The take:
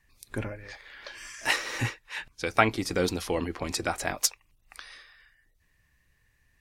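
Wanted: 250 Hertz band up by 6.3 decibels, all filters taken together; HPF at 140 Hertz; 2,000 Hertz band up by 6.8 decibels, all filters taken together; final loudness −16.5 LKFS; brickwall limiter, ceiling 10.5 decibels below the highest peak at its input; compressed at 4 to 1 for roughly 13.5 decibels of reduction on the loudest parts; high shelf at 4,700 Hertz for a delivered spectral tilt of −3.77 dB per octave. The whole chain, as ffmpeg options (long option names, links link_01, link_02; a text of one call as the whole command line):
ffmpeg -i in.wav -af "highpass=140,equalizer=frequency=250:width_type=o:gain=8.5,equalizer=frequency=2000:width_type=o:gain=7,highshelf=frequency=4700:gain=6.5,acompressor=threshold=-29dB:ratio=4,volume=18.5dB,alimiter=limit=-2dB:level=0:latency=1" out.wav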